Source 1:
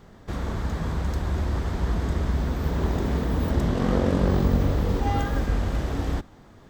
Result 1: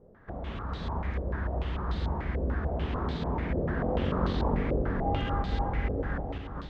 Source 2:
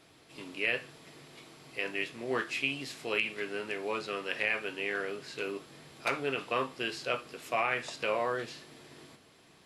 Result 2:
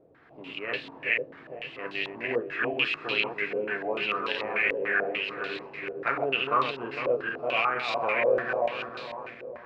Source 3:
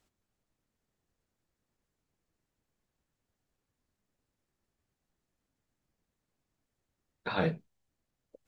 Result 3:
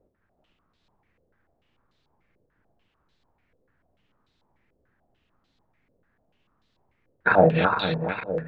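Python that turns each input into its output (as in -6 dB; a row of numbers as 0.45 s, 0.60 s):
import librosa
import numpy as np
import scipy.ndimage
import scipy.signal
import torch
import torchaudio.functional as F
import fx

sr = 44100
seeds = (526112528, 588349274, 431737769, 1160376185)

y = fx.reverse_delay_fb(x, sr, ms=228, feedback_pct=67, wet_db=-3.0)
y = fx.filter_held_lowpass(y, sr, hz=6.8, low_hz=520.0, high_hz=3900.0)
y = y * 10.0 ** (-30 / 20.0) / np.sqrt(np.mean(np.square(y)))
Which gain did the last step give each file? -9.5 dB, -1.0 dB, +8.5 dB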